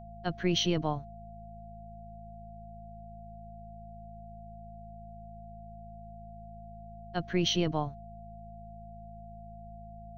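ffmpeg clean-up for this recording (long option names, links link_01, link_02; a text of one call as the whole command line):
ffmpeg -i in.wav -af "bandreject=frequency=54.2:width_type=h:width=4,bandreject=frequency=108.4:width_type=h:width=4,bandreject=frequency=162.6:width_type=h:width=4,bandreject=frequency=216.8:width_type=h:width=4,bandreject=frequency=690:width=30" out.wav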